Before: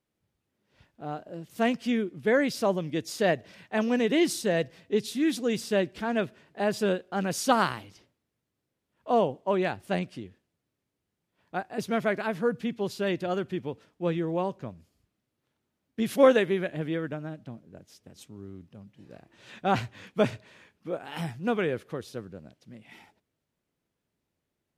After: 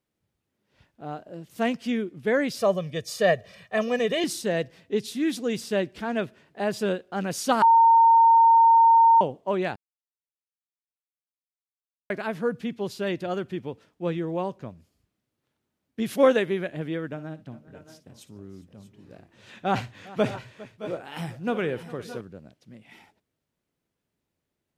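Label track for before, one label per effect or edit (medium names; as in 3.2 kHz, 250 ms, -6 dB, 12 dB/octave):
2.590000	4.240000	comb 1.7 ms, depth 80%
7.620000	9.210000	bleep 915 Hz -12.5 dBFS
9.760000	12.100000	mute
17.060000	22.210000	multi-tap echo 57/405/617/639/641 ms -15/-19.5/-15.5/-16.5/-18.5 dB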